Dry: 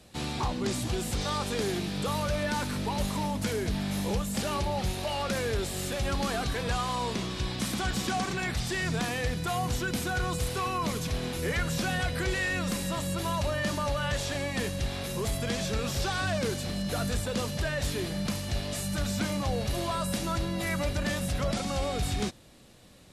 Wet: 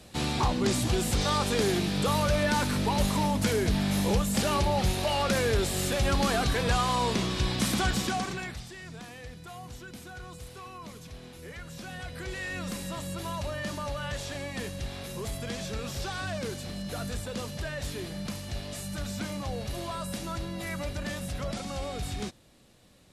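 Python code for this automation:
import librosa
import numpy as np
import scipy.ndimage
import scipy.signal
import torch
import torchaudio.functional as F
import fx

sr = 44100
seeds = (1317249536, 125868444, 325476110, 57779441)

y = fx.gain(x, sr, db=fx.line((7.82, 4.0), (8.38, -3.5), (8.73, -13.5), (11.63, -13.5), (12.64, -4.5)))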